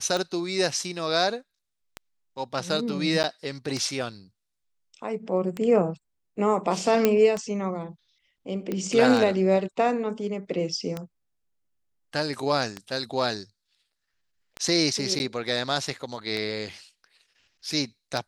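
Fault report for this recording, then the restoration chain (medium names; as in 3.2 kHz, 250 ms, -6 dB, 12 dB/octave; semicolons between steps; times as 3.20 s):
tick 33 1/3 rpm
3.23–3.24 s: dropout 9.2 ms
7.05 s: pop -6 dBFS
8.72 s: pop -17 dBFS
15.19–15.20 s: dropout 9.8 ms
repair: de-click; interpolate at 3.23 s, 9.2 ms; interpolate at 15.19 s, 9.8 ms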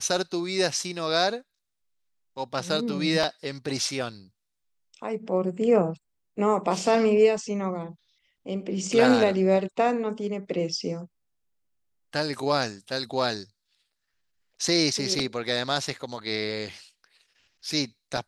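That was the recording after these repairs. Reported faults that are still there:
nothing left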